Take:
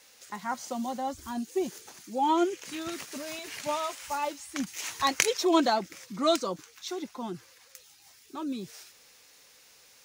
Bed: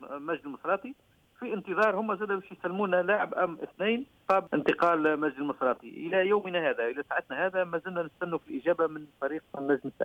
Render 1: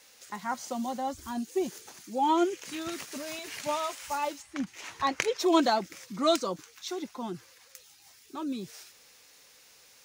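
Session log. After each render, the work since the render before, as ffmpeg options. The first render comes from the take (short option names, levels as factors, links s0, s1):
-filter_complex "[0:a]asplit=3[s0][s1][s2];[s0]afade=t=out:st=4.41:d=0.02[s3];[s1]lowpass=f=1900:p=1,afade=t=in:st=4.41:d=0.02,afade=t=out:st=5.39:d=0.02[s4];[s2]afade=t=in:st=5.39:d=0.02[s5];[s3][s4][s5]amix=inputs=3:normalize=0"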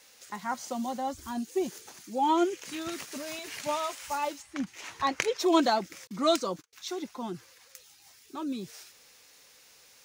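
-filter_complex "[0:a]asettb=1/sr,asplit=3[s0][s1][s2];[s0]atrim=end=6.074[s3];[s1]atrim=start=6.07:end=6.73,asetpts=PTS-STARTPTS,afade=t=in:d=0.004:c=qsin,afade=t=out:st=0.656:d=0.004:c=qsin,agate=range=0.0224:threshold=0.00398:ratio=16:release=100:detection=peak[s4];[s2]atrim=start=6.726[s5];[s3][s4]acrossfade=d=0.004:c1=hsin:c2=qsin[s6];[s6][s5]acrossfade=d=0.004:c1=qsin:c2=hsin"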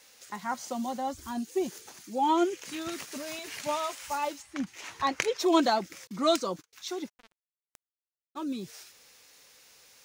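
-filter_complex "[0:a]asplit=3[s0][s1][s2];[s0]afade=t=out:st=7.08:d=0.02[s3];[s1]acrusher=bits=3:mix=0:aa=0.5,afade=t=in:st=7.08:d=0.02,afade=t=out:st=8.35:d=0.02[s4];[s2]afade=t=in:st=8.35:d=0.02[s5];[s3][s4][s5]amix=inputs=3:normalize=0"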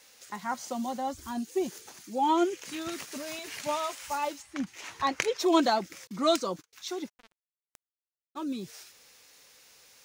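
-af anull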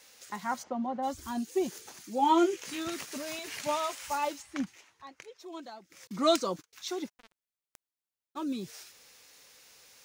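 -filter_complex "[0:a]asplit=3[s0][s1][s2];[s0]afade=t=out:st=0.62:d=0.02[s3];[s1]lowpass=1600,afade=t=in:st=0.62:d=0.02,afade=t=out:st=1.02:d=0.02[s4];[s2]afade=t=in:st=1.02:d=0.02[s5];[s3][s4][s5]amix=inputs=3:normalize=0,asettb=1/sr,asplit=3[s6][s7][s8];[s6]atrim=end=2.184[s9];[s7]atrim=start=2.18:end=2.85,asetpts=PTS-STARTPTS,afade=t=in:d=0.004:c=qsin,afade=t=out:st=0.666:d=0.004:c=qsin,asplit=2[s10][s11];[s11]adelay=18,volume=0.447[s12];[s10][s12]amix=inputs=2:normalize=0,atrim=end_sample=29547[s13];[s8]atrim=start=2.846[s14];[s9][s13]acrossfade=d=0.004:c1=hsin:c2=qsin[s15];[s15][s14]acrossfade=d=0.004:c1=qsin:c2=hsin,asplit=3[s16][s17][s18];[s16]atrim=end=4.85,asetpts=PTS-STARTPTS,afade=t=out:st=4.61:d=0.24:silence=0.0944061[s19];[s17]atrim=start=4.85:end=5.88,asetpts=PTS-STARTPTS,volume=0.0944[s20];[s18]atrim=start=5.88,asetpts=PTS-STARTPTS,afade=t=in:d=0.24:silence=0.0944061[s21];[s19][s20][s21]concat=n=3:v=0:a=1"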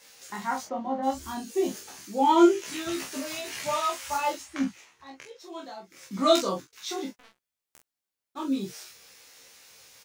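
-filter_complex "[0:a]asplit=2[s0][s1];[s1]adelay=15,volume=0.708[s2];[s0][s2]amix=inputs=2:normalize=0,aecho=1:1:26|49:0.708|0.398"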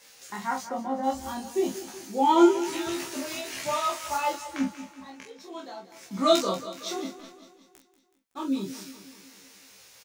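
-af "aecho=1:1:187|374|561|748|935|1122:0.2|0.114|0.0648|0.037|0.0211|0.012"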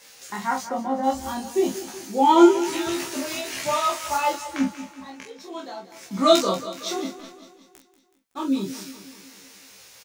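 -af "volume=1.68"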